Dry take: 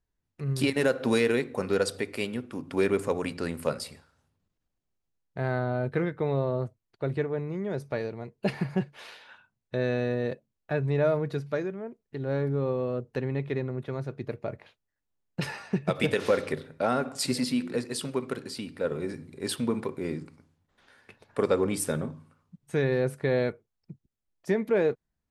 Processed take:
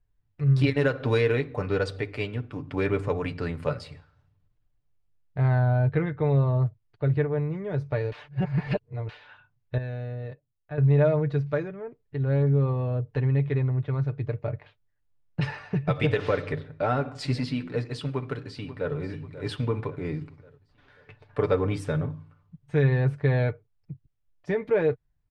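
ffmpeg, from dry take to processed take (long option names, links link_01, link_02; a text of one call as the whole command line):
ffmpeg -i in.wav -filter_complex "[0:a]asplit=2[link_01][link_02];[link_02]afade=type=in:start_time=18.07:duration=0.01,afade=type=out:start_time=18.95:duration=0.01,aecho=0:1:540|1080|1620|2160|2700:0.199526|0.0997631|0.0498816|0.0249408|0.0124704[link_03];[link_01][link_03]amix=inputs=2:normalize=0,asplit=5[link_04][link_05][link_06][link_07][link_08];[link_04]atrim=end=8.122[link_09];[link_05]atrim=start=8.118:end=9.092,asetpts=PTS-STARTPTS,areverse[link_10];[link_06]atrim=start=9.088:end=9.782[link_11];[link_07]atrim=start=9.778:end=10.782,asetpts=PTS-STARTPTS,volume=-10dB[link_12];[link_08]atrim=start=10.778[link_13];[link_09][link_10]acrossfade=duration=0.004:curve1=hsin:curve2=hsin[link_14];[link_14][link_11]acrossfade=duration=0.004:curve1=hsin:curve2=hsin[link_15];[link_15][link_12]acrossfade=duration=0.004:curve1=hsin:curve2=hsin[link_16];[link_16][link_13]acrossfade=duration=0.004:curve1=hsin:curve2=hsin,lowpass=3400,lowshelf=frequency=140:width_type=q:width=1.5:gain=10.5,aecho=1:1:6.8:0.53" out.wav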